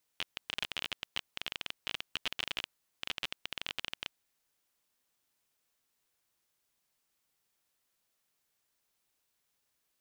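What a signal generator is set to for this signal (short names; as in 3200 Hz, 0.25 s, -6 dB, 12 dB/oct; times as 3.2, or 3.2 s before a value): random clicks 23/s -17.5 dBFS 3.90 s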